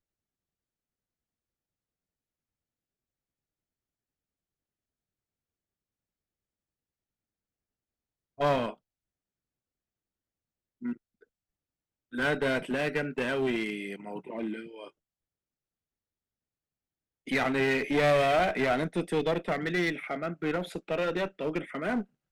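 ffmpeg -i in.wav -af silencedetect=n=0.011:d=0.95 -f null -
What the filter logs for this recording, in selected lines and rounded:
silence_start: 0.00
silence_end: 8.40 | silence_duration: 8.40
silence_start: 8.72
silence_end: 10.82 | silence_duration: 2.10
silence_start: 10.93
silence_end: 12.13 | silence_duration: 1.20
silence_start: 14.88
silence_end: 17.27 | silence_duration: 2.39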